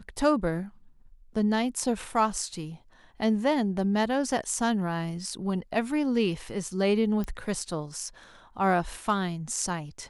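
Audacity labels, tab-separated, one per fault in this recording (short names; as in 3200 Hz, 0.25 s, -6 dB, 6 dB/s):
7.240000	7.240000	pop -21 dBFS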